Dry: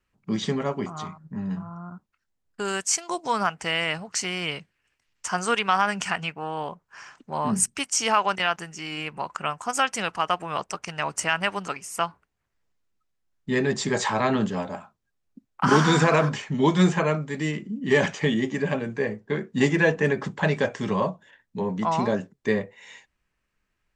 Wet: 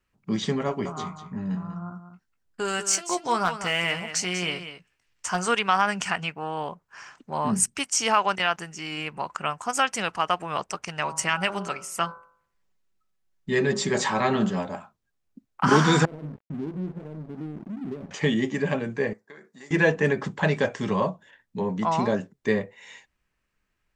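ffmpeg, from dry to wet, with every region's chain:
-filter_complex "[0:a]asettb=1/sr,asplit=3[s0][s1][s2];[s0]atrim=end=0.664[s3];[s1]atrim=start=0.66:end=5.48,asetpts=PTS-STARTPTS,afade=t=in:d=0.004:c=qsin,afade=t=out:st=4.816:d=0.004:c=qsin,asoftclip=type=hard:threshold=0.178,asplit=2[s4][s5];[s5]adelay=17,volume=0.355[s6];[s4][s6]amix=inputs=2:normalize=0,atrim=end_sample=212562,aecho=1:1:193:0.299,atrim=end_sample=212562[s7];[s2]atrim=start=5.476[s8];[s3][s7]acrossfade=d=0.004:c1=hsin:c2=qsin[s9];[s9][s8]acrossfade=d=0.004:c1=qsin:c2=hsin,asettb=1/sr,asplit=3[s10][s11][s12];[s10]atrim=end=11.034[s13];[s11]atrim=start=11.03:end=14.59,asetpts=PTS-STARTPTS,afade=t=in:d=0.004:c=qsin,afade=t=out:st=3.556:d=0.004:c=qsin,aecho=1:1:5.3:0.4,atrim=end_sample=156996,bandreject=f=50.57:t=h:w=4,bandreject=f=101.14:t=h:w=4,bandreject=f=151.71:t=h:w=4,bandreject=f=202.28:t=h:w=4,bandreject=f=252.85:t=h:w=4,bandreject=f=303.42:t=h:w=4,bandreject=f=353.99:t=h:w=4,bandreject=f=404.56:t=h:w=4,bandreject=f=455.13:t=h:w=4,bandreject=f=505.7:t=h:w=4,bandreject=f=556.27:t=h:w=4,bandreject=f=606.84:t=h:w=4,bandreject=f=657.41:t=h:w=4,bandreject=f=707.98:t=h:w=4,bandreject=f=758.55:t=h:w=4,bandreject=f=809.12:t=h:w=4,bandreject=f=859.69:t=h:w=4,bandreject=f=910.26:t=h:w=4,bandreject=f=960.83:t=h:w=4,bandreject=f=1011.4:t=h:w=4,bandreject=f=1061.97:t=h:w=4,bandreject=f=1112.54:t=h:w=4,bandreject=f=1163.11:t=h:w=4,bandreject=f=1213.68:t=h:w=4,bandreject=f=1264.25:t=h:w=4,bandreject=f=1314.82:t=h:w=4,bandreject=f=1365.39:t=h:w=4,bandreject=f=1415.96:t=h:w=4,bandreject=f=1466.53:t=h:w=4,bandreject=f=1517.1:t=h:w=4,bandreject=f=1567.67:t=h:w=4[s14];[s12]atrim=start=14.586[s15];[s13][s14]acrossfade=d=0.004:c1=hsin:c2=qsin[s16];[s16][s15]acrossfade=d=0.004:c1=qsin:c2=hsin,asettb=1/sr,asplit=3[s17][s18][s19];[s17]atrim=end=16.054[s20];[s18]atrim=start=16.05:end=18.11,asetpts=PTS-STARTPTS,afade=t=in:d=0.004:c=qsin,afade=t=out:st=2.056:d=0.004:c=qsin,acompressor=threshold=0.0224:ratio=3:attack=3.2:release=140:knee=1:detection=peak,lowpass=f=320:t=q:w=1.5,aeval=exprs='sgn(val(0))*max(abs(val(0))-0.00631,0)':c=same[s21];[s19]atrim=start=18.106[s22];[s20][s21]acrossfade=d=0.004:c1=hsin:c2=qsin[s23];[s23][s22]acrossfade=d=0.004:c1=qsin:c2=hsin,asettb=1/sr,asplit=3[s24][s25][s26];[s24]atrim=end=19.134[s27];[s25]atrim=start=19.13:end=19.71,asetpts=PTS-STARTPTS,afade=t=in:d=0.004:c=qsin,afade=t=out:st=0.576:d=0.004:c=qsin,equalizer=f=2900:w=2.3:g=-12,acompressor=threshold=0.0251:ratio=6:attack=3.2:release=140:knee=1:detection=peak,highpass=f=1400:p=1[s28];[s26]atrim=start=19.706[s29];[s27][s28]acrossfade=d=0.004:c1=hsin:c2=qsin[s30];[s30][s29]acrossfade=d=0.004:c1=qsin:c2=hsin"

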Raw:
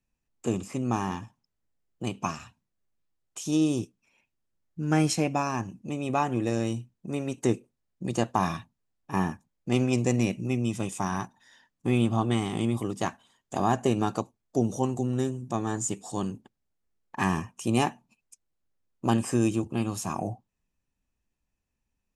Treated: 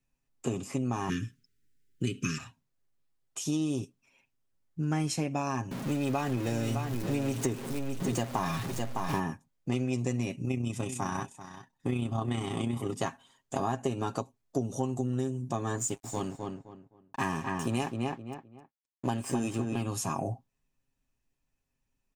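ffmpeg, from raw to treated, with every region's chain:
-filter_complex "[0:a]asettb=1/sr,asplit=3[s0][s1][s2];[s0]atrim=end=1.094[s3];[s1]atrim=start=1.09:end=2.38,asetpts=PTS-STARTPTS,afade=t=in:d=0.004:c=qsin,afade=t=out:st=1.286:d=0.004:c=qsin,acontrast=62,asuperstop=centerf=790:order=8:qfactor=0.8[s4];[s2]atrim=start=2.376[s5];[s3][s4]acrossfade=d=0.004:c1=hsin:c2=qsin[s6];[s6][s5]acrossfade=d=0.004:c1=qsin:c2=hsin,asettb=1/sr,asplit=3[s7][s8][s9];[s7]atrim=end=5.714[s10];[s8]atrim=start=5.71:end=9.2,asetpts=PTS-STARTPTS,afade=t=in:d=0.004:c=qsin,afade=t=out:st=3.486:d=0.004:c=qsin,aeval=exprs='val(0)+0.5*0.0251*sgn(val(0))':c=same,aecho=1:1:609:0.335,atrim=end_sample=153909[s11];[s9]atrim=start=9.196[s12];[s10][s11]acrossfade=d=0.004:c1=hsin:c2=qsin[s13];[s13][s12]acrossfade=d=0.004:c1=qsin:c2=hsin,asettb=1/sr,asplit=3[s14][s15][s16];[s14]atrim=end=10.354[s17];[s15]atrim=start=10.35:end=12.94,asetpts=PTS-STARTPTS,afade=t=in:d=0.004:c=qsin,afade=t=out:st=2.586:d=0.004:c=qsin,tremolo=f=31:d=0.462,aecho=1:1:388:0.178,atrim=end_sample=114219[s18];[s16]atrim=start=12.936[s19];[s17][s18]acrossfade=d=0.004:c1=hsin:c2=qsin[s20];[s20][s19]acrossfade=d=0.004:c1=qsin:c2=hsin,asettb=1/sr,asplit=3[s21][s22][s23];[s21]atrim=end=15.784[s24];[s22]atrim=start=15.78:end=19.82,asetpts=PTS-STARTPTS,afade=t=in:d=0.004:c=qsin,afade=t=out:st=4.036:d=0.004:c=qsin,lowshelf=f=120:g=-3.5,aeval=exprs='sgn(val(0))*max(abs(val(0))-0.00531,0)':c=same,asplit=2[s25][s26];[s26]adelay=259,lowpass=f=2400:p=1,volume=0.562,asplit=2[s27][s28];[s28]adelay=259,lowpass=f=2400:p=1,volume=0.26,asplit=2[s29][s30];[s30]adelay=259,lowpass=f=2400:p=1,volume=0.26[s31];[s25][s27][s29][s31]amix=inputs=4:normalize=0,atrim=end_sample=178164[s32];[s23]atrim=start=19.816[s33];[s24][s32]acrossfade=d=0.004:c1=hsin:c2=qsin[s34];[s34][s33]acrossfade=d=0.004:c1=qsin:c2=hsin,aecho=1:1:7.4:0.5,acompressor=threshold=0.0447:ratio=5"

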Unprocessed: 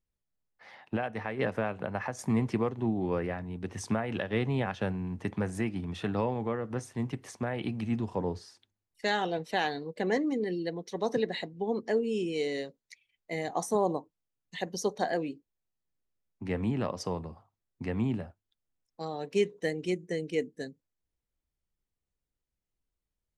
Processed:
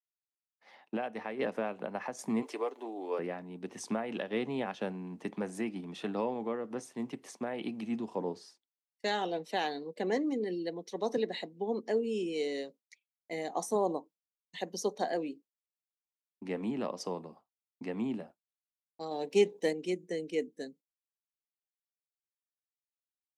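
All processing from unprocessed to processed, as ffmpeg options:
-filter_complex "[0:a]asettb=1/sr,asplit=3[s0][s1][s2];[s0]atrim=end=2.424[s3];[s1]atrim=start=2.42:end=3.19,asetpts=PTS-STARTPTS,afade=t=in:d=0.004:c=qsin,afade=t=out:st=0.766:d=0.004:c=qsin,highpass=f=370:w=0.5412,highpass=f=370:w=1.3066,highshelf=f=7700:g=8,aecho=1:1:6.9:0.38,atrim=end_sample=33957[s4];[s2]atrim=start=3.186[s5];[s3][s4]acrossfade=d=0.004:c1=hsin:c2=qsin[s6];[s6][s5]acrossfade=d=0.004:c1=qsin:c2=hsin,asettb=1/sr,asplit=3[s7][s8][s9];[s7]atrim=end=19.114[s10];[s8]atrim=start=19.11:end=19.73,asetpts=PTS-STARTPTS,afade=t=in:d=0.004:c=qsin,afade=t=out:st=0.616:d=0.004:c=qsin,aeval=exprs='if(lt(val(0),0),0.708*val(0),val(0))':c=same,equalizer=f=1300:t=o:w=0.51:g=-10.5,acontrast=39[s11];[s9]atrim=start=19.726[s12];[s10][s11]acrossfade=d=0.004:c1=hsin:c2=qsin[s13];[s13][s12]acrossfade=d=0.004:c1=qsin:c2=hsin,highpass=f=200:w=0.5412,highpass=f=200:w=1.3066,agate=range=0.0224:threshold=0.00355:ratio=3:detection=peak,equalizer=f=1600:t=o:w=0.87:g=-4.5,volume=0.794"

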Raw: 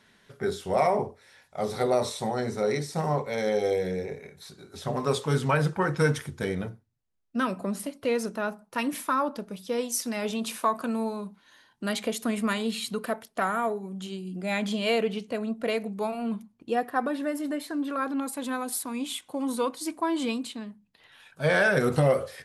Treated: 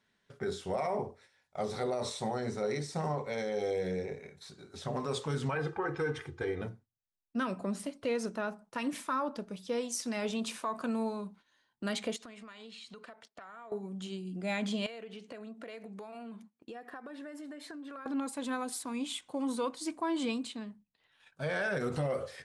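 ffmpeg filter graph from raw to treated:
-filter_complex "[0:a]asettb=1/sr,asplit=3[s0][s1][s2];[s0]atrim=end=5.554[s3];[s1]atrim=start=5.55:end=6.62,asetpts=PTS-STARTPTS,afade=t=in:d=0.004:c=qsin,afade=t=out:st=1.066:d=0.004:c=qsin,bass=f=250:g=-3,treble=f=4000:g=-13,aecho=1:1:2.5:0.81,atrim=end_sample=47187[s4];[s2]atrim=start=6.616[s5];[s3][s4]acrossfade=d=0.004:c1=hsin:c2=qsin[s6];[s6][s5]acrossfade=d=0.004:c1=qsin:c2=hsin,asettb=1/sr,asplit=3[s7][s8][s9];[s7]atrim=end=12.164[s10];[s8]atrim=start=12.16:end=13.72,asetpts=PTS-STARTPTS,afade=t=in:d=0.004:c=qsin,afade=t=out:st=1.556:d=0.004:c=qsin,lowpass=6000,lowshelf=f=380:g=-12,acompressor=threshold=0.00891:ratio=16:attack=3.2:release=140:knee=1:detection=peak[s11];[s9]atrim=start=13.716[s12];[s10][s11]acrossfade=d=0.004:c1=hsin:c2=qsin[s13];[s13][s12]acrossfade=d=0.004:c1=qsin:c2=hsin,asettb=1/sr,asplit=3[s14][s15][s16];[s14]atrim=end=14.864[s17];[s15]atrim=start=14.86:end=18.06,asetpts=PTS-STARTPTS,afade=t=in:d=0.004:c=qsin,afade=t=out:st=3.196:d=0.004:c=qsin,highpass=220,equalizer=f=1700:w=2.4:g=4,acompressor=threshold=0.0141:ratio=16:attack=3.2:release=140:knee=1:detection=peak[s18];[s16]atrim=start=18.056[s19];[s17][s18]acrossfade=d=0.004:c1=hsin:c2=qsin[s20];[s20][s19]acrossfade=d=0.004:c1=qsin:c2=hsin,lowpass=f=9200:w=0.5412,lowpass=f=9200:w=1.3066,agate=range=0.282:threshold=0.00251:ratio=16:detection=peak,alimiter=limit=0.0944:level=0:latency=1:release=80,volume=0.631"

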